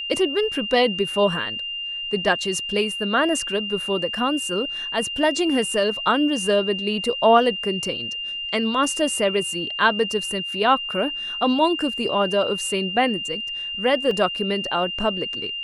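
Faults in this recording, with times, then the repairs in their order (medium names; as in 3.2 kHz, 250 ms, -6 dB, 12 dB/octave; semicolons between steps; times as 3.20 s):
whine 2.8 kHz -27 dBFS
14.11 s: dropout 2.5 ms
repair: band-stop 2.8 kHz, Q 30; interpolate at 14.11 s, 2.5 ms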